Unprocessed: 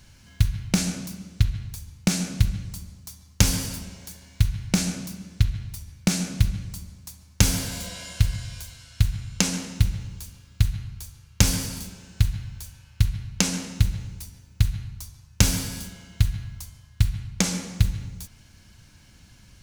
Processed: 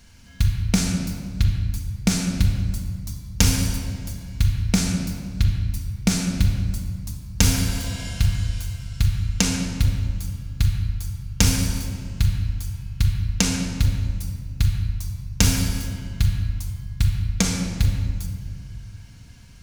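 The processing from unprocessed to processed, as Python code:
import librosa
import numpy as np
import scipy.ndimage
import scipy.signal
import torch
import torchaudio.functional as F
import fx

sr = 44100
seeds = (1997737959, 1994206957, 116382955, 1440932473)

y = fx.room_shoebox(x, sr, seeds[0], volume_m3=2900.0, walls='mixed', distance_m=1.7)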